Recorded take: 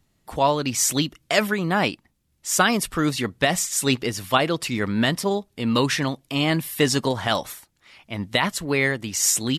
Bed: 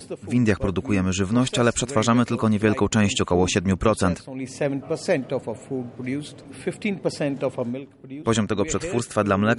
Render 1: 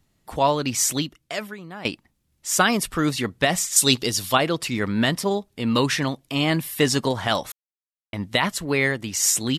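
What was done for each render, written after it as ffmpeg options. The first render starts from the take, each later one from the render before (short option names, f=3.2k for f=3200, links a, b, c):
-filter_complex "[0:a]asettb=1/sr,asplit=3[a][b][c];[a]atrim=end=3.764[d];[b]atrim=start=3.76:end=4.33,asetpts=PTS-STARTPTS,afade=t=in:d=0.004:c=qsin,afade=t=out:st=0.566:d=0.004:c=qsin,highshelf=f=2.9k:t=q:w=1.5:g=7[e];[c]atrim=start=4.326[f];[d][e]acrossfade=d=0.004:c1=hsin:c2=qsin[g];[g][f]acrossfade=d=0.004:c1=qsin:c2=hsin,asplit=4[h][i][j][k];[h]atrim=end=1.85,asetpts=PTS-STARTPTS,afade=t=out:st=0.82:d=1.03:c=qua:silence=0.149624[l];[i]atrim=start=1.85:end=7.52,asetpts=PTS-STARTPTS,afade=t=in:d=0.004:c=hsin:silence=0.149624,afade=t=out:st=5.666:d=0.004:c=hsin[m];[j]atrim=start=7.52:end=8.13,asetpts=PTS-STARTPTS,volume=0[n];[k]atrim=start=8.13,asetpts=PTS-STARTPTS,afade=t=in:d=0.004:c=hsin[o];[l][m][n][o]concat=n=4:v=0:a=1"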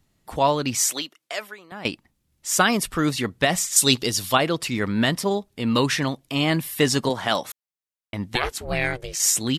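-filter_complex "[0:a]asettb=1/sr,asplit=3[a][b][c];[a]atrim=end=0.794[d];[b]atrim=start=0.79:end=1.72,asetpts=PTS-STARTPTS,afade=t=in:d=0.004:c=qsin,afade=t=out:st=0.926:d=0.004:c=qsin,highpass=490[e];[c]atrim=start=1.716[f];[d][e]acrossfade=d=0.004:c1=hsin:c2=qsin[g];[g][f]acrossfade=d=0.004:c1=qsin:c2=hsin,asettb=1/sr,asplit=3[h][i][j];[h]atrim=end=7.094[k];[i]atrim=start=7.09:end=7.49,asetpts=PTS-STARTPTS,afade=t=in:d=0.004:c=qsin,afade=t=out:st=0.396:d=0.004:c=qsin,highpass=160[l];[j]atrim=start=7.486[m];[k][l]acrossfade=d=0.004:c1=hsin:c2=qsin[n];[n][m]acrossfade=d=0.004:c1=qsin:c2=hsin,asettb=1/sr,asplit=3[o][p][q];[o]atrim=end=8.354[r];[p]atrim=start=8.35:end=9.2,asetpts=PTS-STARTPTS,afade=t=in:d=0.004:c=qsin,afade=t=out:st=0.846:d=0.004:c=qsin,aeval=exprs='val(0)*sin(2*PI*250*n/s)':c=same[s];[q]atrim=start=9.196[t];[r][s]acrossfade=d=0.004:c1=hsin:c2=qsin[u];[u][t]acrossfade=d=0.004:c1=qsin:c2=hsin"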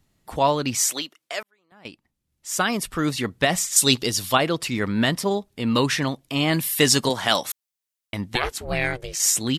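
-filter_complex "[0:a]asettb=1/sr,asplit=3[a][b][c];[a]atrim=end=6.534[d];[b]atrim=start=6.53:end=8.21,asetpts=PTS-STARTPTS,afade=t=in:d=0.004:c=qsin,afade=t=out:st=1.676:d=0.004:c=qsin,highshelf=f=2.6k:g=8[e];[c]atrim=start=8.206[f];[d][e]acrossfade=d=0.004:c1=hsin:c2=qsin[g];[g][f]acrossfade=d=0.004:c1=qsin:c2=hsin,asplit=2[h][i];[h]atrim=end=1.43,asetpts=PTS-STARTPTS,afade=t=out:st=1.426:d=0.004:c=hsin[j];[i]atrim=start=1.43,asetpts=PTS-STARTPTS,afade=t=in:d=1.9[k];[j][k]concat=n=2:v=0:a=1"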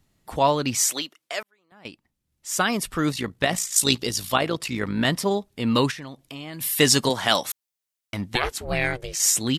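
-filter_complex "[0:a]asettb=1/sr,asplit=3[a][b][c];[a]atrim=end=3.124[d];[b]atrim=start=3.12:end=5.05,asetpts=PTS-STARTPTS,afade=t=in:d=0.004:c=qsin,afade=t=out:st=1.926:d=0.004:c=qsin,tremolo=f=56:d=0.571[e];[c]atrim=start=5.046[f];[d][e]acrossfade=d=0.004:c1=hsin:c2=qsin[g];[g][f]acrossfade=d=0.004:c1=qsin:c2=hsin,asplit=3[h][i][j];[h]afade=t=out:st=5.9:d=0.02[k];[i]acompressor=threshold=-36dB:ratio=4:attack=3.2:release=140:knee=1:detection=peak,afade=t=in:st=5.9:d=0.02,afade=t=out:st=6.6:d=0.02[l];[j]afade=t=in:st=6.6:d=0.02[m];[k][l][m]amix=inputs=3:normalize=0,asettb=1/sr,asplit=3[n][o][p];[n]atrim=end=7.454[q];[o]atrim=start=7.45:end=8.33,asetpts=PTS-STARTPTS,afade=t=in:d=0.004:c=qsin,afade=t=out:st=0.876:d=0.004:c=qsin,volume=21dB,asoftclip=hard,volume=-21dB[r];[p]atrim=start=8.326[s];[q][r]acrossfade=d=0.004:c1=hsin:c2=qsin[t];[t][s]acrossfade=d=0.004:c1=qsin:c2=hsin"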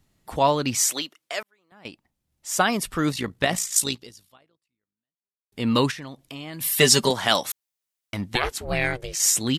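-filter_complex "[0:a]asettb=1/sr,asplit=3[a][b][c];[a]atrim=end=1.874[d];[b]atrim=start=1.87:end=2.7,asetpts=PTS-STARTPTS,afade=t=in:d=0.004:c=qsin,afade=t=out:st=0.826:d=0.004:c=qsin,equalizer=f=720:t=o:w=0.77:g=5.5[e];[c]atrim=start=2.696[f];[d][e]acrossfade=d=0.004:c1=hsin:c2=qsin[g];[g][f]acrossfade=d=0.004:c1=qsin:c2=hsin,asettb=1/sr,asplit=3[h][i][j];[h]atrim=end=6.644[k];[i]atrim=start=6.64:end=7.11,asetpts=PTS-STARTPTS,afade=t=in:d=0.004:c=qsin,afade=t=out:st=0.466:d=0.004:c=qsin,aecho=1:1:5.1:0.65,atrim=end_sample=20727[l];[j]atrim=start=7.106[m];[k][l]acrossfade=d=0.004:c1=hsin:c2=qsin[n];[n][m]acrossfade=d=0.004:c1=qsin:c2=hsin,asplit=2[o][p];[o]atrim=end=5.52,asetpts=PTS-STARTPTS,afade=t=out:st=3.77:d=1.75:c=exp[q];[p]atrim=start=5.52,asetpts=PTS-STARTPTS,afade=t=in:d=0.004:c=hsin[r];[q][r]concat=n=2:v=0:a=1"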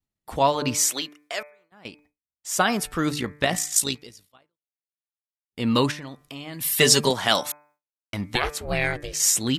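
-af "bandreject=f=147.9:t=h:w=4,bandreject=f=295.8:t=h:w=4,bandreject=f=443.7:t=h:w=4,bandreject=f=591.6:t=h:w=4,bandreject=f=739.5:t=h:w=4,bandreject=f=887.4:t=h:w=4,bandreject=f=1.0353k:t=h:w=4,bandreject=f=1.1832k:t=h:w=4,bandreject=f=1.3311k:t=h:w=4,bandreject=f=1.479k:t=h:w=4,bandreject=f=1.6269k:t=h:w=4,bandreject=f=1.7748k:t=h:w=4,bandreject=f=1.9227k:t=h:w=4,bandreject=f=2.0706k:t=h:w=4,bandreject=f=2.2185k:t=h:w=4,bandreject=f=2.3664k:t=h:w=4,bandreject=f=2.5143k:t=h:w=4,agate=range=-33dB:threshold=-53dB:ratio=3:detection=peak"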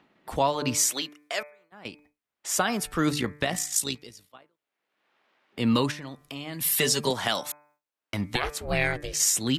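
-filter_complex "[0:a]acrossover=split=200|3000[a][b][c];[b]acompressor=mode=upward:threshold=-40dB:ratio=2.5[d];[a][d][c]amix=inputs=3:normalize=0,alimiter=limit=-11.5dB:level=0:latency=1:release=438"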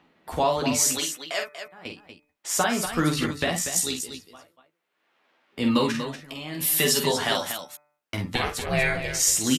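-filter_complex "[0:a]asplit=2[a][b];[b]adelay=12,volume=-5.5dB[c];[a][c]amix=inputs=2:normalize=0,aecho=1:1:46.65|239.1:0.501|0.355"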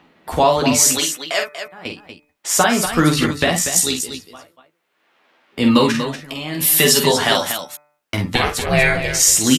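-af "volume=8.5dB,alimiter=limit=-1dB:level=0:latency=1"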